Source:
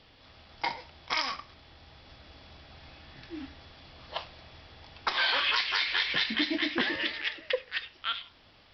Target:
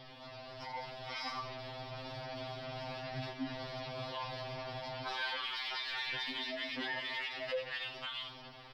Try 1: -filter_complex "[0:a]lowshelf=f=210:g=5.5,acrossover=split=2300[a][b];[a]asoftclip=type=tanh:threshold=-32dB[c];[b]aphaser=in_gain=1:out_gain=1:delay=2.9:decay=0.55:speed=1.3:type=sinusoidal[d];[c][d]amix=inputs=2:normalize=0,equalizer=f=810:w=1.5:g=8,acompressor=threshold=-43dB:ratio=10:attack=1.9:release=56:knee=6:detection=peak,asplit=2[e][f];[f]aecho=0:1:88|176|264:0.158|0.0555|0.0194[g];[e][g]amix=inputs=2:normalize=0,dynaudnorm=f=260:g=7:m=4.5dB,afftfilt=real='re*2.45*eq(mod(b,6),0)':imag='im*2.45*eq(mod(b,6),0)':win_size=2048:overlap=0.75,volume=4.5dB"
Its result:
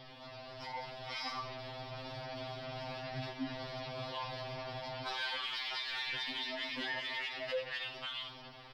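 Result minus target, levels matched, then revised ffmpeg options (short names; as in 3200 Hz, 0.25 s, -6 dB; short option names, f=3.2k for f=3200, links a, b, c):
soft clip: distortion +9 dB
-filter_complex "[0:a]lowshelf=f=210:g=5.5,acrossover=split=2300[a][b];[a]asoftclip=type=tanh:threshold=-22.5dB[c];[b]aphaser=in_gain=1:out_gain=1:delay=2.9:decay=0.55:speed=1.3:type=sinusoidal[d];[c][d]amix=inputs=2:normalize=0,equalizer=f=810:w=1.5:g=8,acompressor=threshold=-43dB:ratio=10:attack=1.9:release=56:knee=6:detection=peak,asplit=2[e][f];[f]aecho=0:1:88|176|264:0.158|0.0555|0.0194[g];[e][g]amix=inputs=2:normalize=0,dynaudnorm=f=260:g=7:m=4.5dB,afftfilt=real='re*2.45*eq(mod(b,6),0)':imag='im*2.45*eq(mod(b,6),0)':win_size=2048:overlap=0.75,volume=4.5dB"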